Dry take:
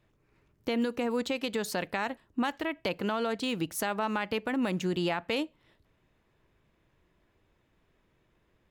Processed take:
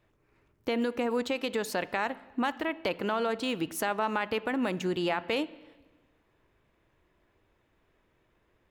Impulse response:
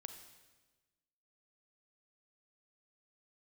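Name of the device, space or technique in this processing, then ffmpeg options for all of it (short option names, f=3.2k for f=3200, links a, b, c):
filtered reverb send: -filter_complex "[0:a]asplit=2[a][b];[b]highpass=f=160:w=0.5412,highpass=f=160:w=1.3066,lowpass=3.2k[c];[1:a]atrim=start_sample=2205[d];[c][d]afir=irnorm=-1:irlink=0,volume=-2.5dB[e];[a][e]amix=inputs=2:normalize=0,volume=-1dB"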